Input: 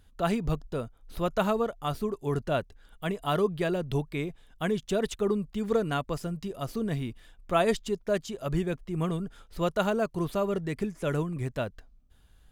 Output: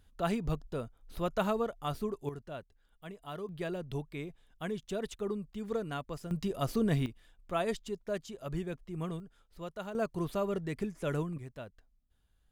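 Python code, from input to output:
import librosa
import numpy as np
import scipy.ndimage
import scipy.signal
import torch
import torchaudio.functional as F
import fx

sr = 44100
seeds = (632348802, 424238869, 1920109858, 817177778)

y = fx.gain(x, sr, db=fx.steps((0.0, -4.5), (2.29, -15.0), (3.49, -8.5), (6.31, 1.5), (7.06, -8.0), (9.2, -14.5), (9.95, -4.5), (11.38, -13.5)))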